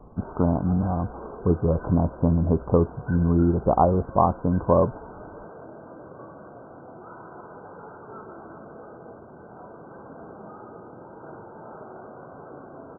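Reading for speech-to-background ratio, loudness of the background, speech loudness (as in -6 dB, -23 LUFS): 20.0 dB, -43.0 LUFS, -23.0 LUFS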